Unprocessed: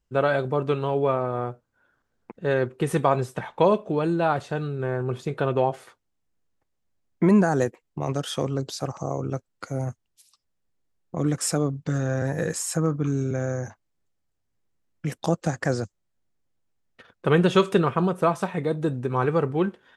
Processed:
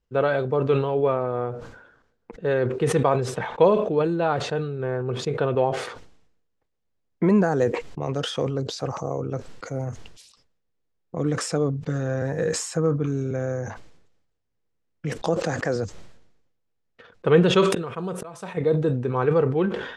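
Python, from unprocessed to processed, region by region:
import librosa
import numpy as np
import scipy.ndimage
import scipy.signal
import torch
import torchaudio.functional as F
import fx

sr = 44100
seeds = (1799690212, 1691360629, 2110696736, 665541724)

y = fx.chain(x, sr, fx.highpass(hz=220.0, slope=6),
    fx.pre_swell(db_per_s=88.0), at=(15.24, 15.76))
y = fx.chain(y, sr, fx.auto_swell(attack_ms=653.0),
    fx.peak_eq(hz=11000.0, db=14.5, octaves=1.4), at=(17.7, 18.57))
y = scipy.signal.sosfilt(scipy.signal.butter(2, 5700.0, 'lowpass', fs=sr, output='sos'), y)
y = fx.peak_eq(y, sr, hz=470.0, db=7.5, octaves=0.26)
y = fx.sustainer(y, sr, db_per_s=63.0)
y = F.gain(torch.from_numpy(y), -1.5).numpy()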